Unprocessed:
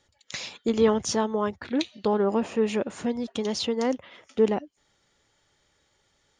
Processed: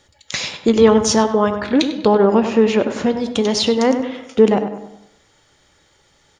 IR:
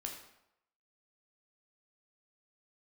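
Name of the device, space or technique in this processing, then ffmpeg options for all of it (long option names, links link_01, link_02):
compressed reverb return: -filter_complex "[0:a]asettb=1/sr,asplit=3[link_01][link_02][link_03];[link_01]atrim=end=2.184[link_04];[link_02]atrim=start=2.18:end=3.2,asetpts=PTS-STARTPTS,afade=type=in:duration=0.004:curve=qsin,afade=type=out:start_time=1.016:duration=0.004:curve=qsin,lowpass=frequency=6300:width=0.5412,lowpass=frequency=6300:width=1.3066[link_05];[link_03]atrim=start=3.196[link_06];[link_04][link_05]acrossfade=duration=0.004:curve1=hsin:curve2=qsin[link_07];[link_07][link_06]acrossfade=duration=0.004:curve1=qsin:curve2=hsin,asplit=2[link_08][link_09];[1:a]atrim=start_sample=2205[link_10];[link_09][link_10]afir=irnorm=-1:irlink=0,acompressor=threshold=-27dB:ratio=6,volume=-3dB[link_11];[link_08][link_11]amix=inputs=2:normalize=0,asplit=2[link_12][link_13];[link_13]adelay=98,lowpass=frequency=1900:poles=1,volume=-8.5dB,asplit=2[link_14][link_15];[link_15]adelay=98,lowpass=frequency=1900:poles=1,volume=0.46,asplit=2[link_16][link_17];[link_17]adelay=98,lowpass=frequency=1900:poles=1,volume=0.46,asplit=2[link_18][link_19];[link_19]adelay=98,lowpass=frequency=1900:poles=1,volume=0.46,asplit=2[link_20][link_21];[link_21]adelay=98,lowpass=frequency=1900:poles=1,volume=0.46[link_22];[link_12][link_14][link_16][link_18][link_20][link_22]amix=inputs=6:normalize=0,volume=8dB"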